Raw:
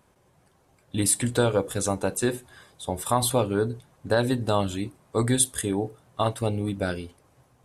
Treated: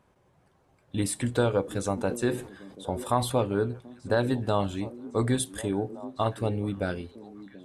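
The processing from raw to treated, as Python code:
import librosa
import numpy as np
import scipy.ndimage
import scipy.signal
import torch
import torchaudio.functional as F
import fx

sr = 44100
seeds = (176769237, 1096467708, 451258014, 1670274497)

y = fx.high_shelf(x, sr, hz=5200.0, db=-11.0)
y = fx.echo_stepped(y, sr, ms=734, hz=280.0, octaves=1.4, feedback_pct=70, wet_db=-12.0)
y = fx.sustainer(y, sr, db_per_s=110.0, at=(1.97, 3.34), fade=0.02)
y = F.gain(torch.from_numpy(y), -2.0).numpy()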